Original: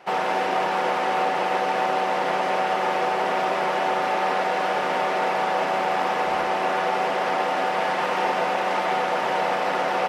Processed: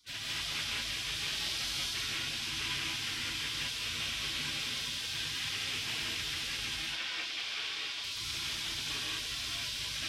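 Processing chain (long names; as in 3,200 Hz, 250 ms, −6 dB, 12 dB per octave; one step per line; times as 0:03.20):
low-shelf EQ 140 Hz +8.5 dB
0:01.11–0:01.94: flutter between parallel walls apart 7.6 metres, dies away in 0.91 s
gate on every frequency bin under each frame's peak −25 dB weak
0:06.75–0:08.04: three-way crossover with the lows and the highs turned down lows −16 dB, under 320 Hz, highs −12 dB, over 5,800 Hz
reverb whose tail is shaped and stops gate 230 ms rising, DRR −3.5 dB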